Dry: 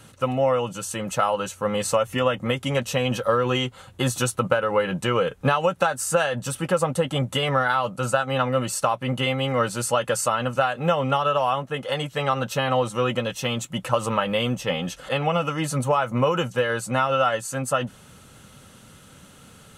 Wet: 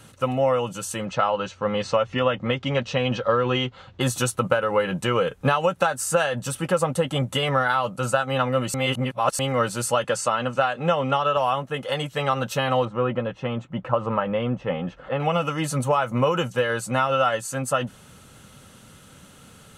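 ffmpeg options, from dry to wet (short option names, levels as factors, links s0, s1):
-filter_complex "[0:a]asettb=1/sr,asplit=3[s0][s1][s2];[s0]atrim=end=1.054[s3];[s1]atrim=start=1.05:end=4.01,asetpts=PTS-STARTPTS,afade=t=in:d=0.004:c=qsin,afade=t=out:st=2.956:d=0.004:c=qsin,lowpass=f=5100:w=0.5412,lowpass=f=5100:w=1.3066[s4];[s2]atrim=start=4.006[s5];[s3][s4]acrossfade=d=0.004:c1=hsin:c2=qsin[s6];[s6][s5]acrossfade=d=0.004:c1=qsin:c2=hsin,asettb=1/sr,asplit=3[s7][s8][s9];[s7]atrim=end=10.044[s10];[s8]atrim=start=10.04:end=11.37,asetpts=PTS-STARTPTS,afade=t=in:d=0.004:c=qsin,afade=t=out:st=1.326:d=0.004:c=qsin,highpass=120,lowpass=7600[s11];[s9]atrim=start=11.366[s12];[s10][s11]acrossfade=d=0.004:c1=hsin:c2=qsin[s13];[s13][s12]acrossfade=d=0.004:c1=qsin:c2=hsin,asettb=1/sr,asplit=3[s14][s15][s16];[s14]atrim=end=12.854[s17];[s15]atrim=start=12.85:end=15.2,asetpts=PTS-STARTPTS,afade=t=in:d=0.004:c=qsin,afade=t=out:st=2.346:d=0.004:c=qsin,lowpass=1600[s18];[s16]atrim=start=15.196[s19];[s17][s18]acrossfade=d=0.004:c1=hsin:c2=qsin[s20];[s20][s19]acrossfade=d=0.004:c1=qsin:c2=hsin,asplit=3[s21][s22][s23];[s21]atrim=end=8.742[s24];[s22]atrim=start=8.738:end=9.392,asetpts=PTS-STARTPTS,areverse[s25];[s23]atrim=start=9.388[s26];[s24][s25]acrossfade=d=0.004:c1=hsin:c2=hsin[s27];[s27][s26]acrossfade=d=0.004:c1=hsin:c2=hsin"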